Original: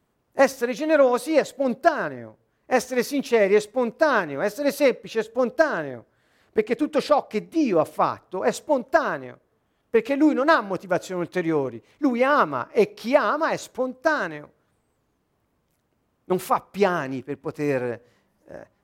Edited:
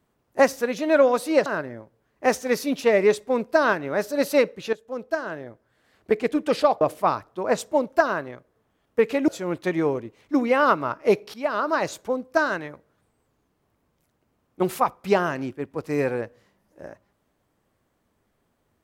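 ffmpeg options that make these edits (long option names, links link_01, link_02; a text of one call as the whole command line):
ffmpeg -i in.wav -filter_complex "[0:a]asplit=6[link_01][link_02][link_03][link_04][link_05][link_06];[link_01]atrim=end=1.462[link_07];[link_02]atrim=start=1.928:end=5.2,asetpts=PTS-STARTPTS,afade=type=out:start_time=3.268:duration=0.004:curve=hsin:silence=0.199526[link_08];[link_03]atrim=start=5.2:end=7.282,asetpts=PTS-STARTPTS,afade=type=in:duration=1.39:silence=0.199526[link_09];[link_04]atrim=start=7.768:end=10.242[link_10];[link_05]atrim=start=10.978:end=13.04,asetpts=PTS-STARTPTS,afade=type=out:start_time=2.058:duration=0.004:curve=hsin:silence=0.125893[link_11];[link_06]atrim=start=13.04,asetpts=PTS-STARTPTS,afade=type=in:duration=0.35:silence=0.125893[link_12];[link_08][link_09]concat=n=2:v=0:a=1[link_13];[link_07][link_13]acrossfade=duration=0.004:curve1=hsin:curve2=hsin[link_14];[link_14][link_10]acrossfade=duration=0.004:curve1=hsin:curve2=hsin[link_15];[link_11][link_12]concat=n=2:v=0:a=1[link_16];[link_15][link_16]acrossfade=duration=0.004:curve1=hsin:curve2=hsin" out.wav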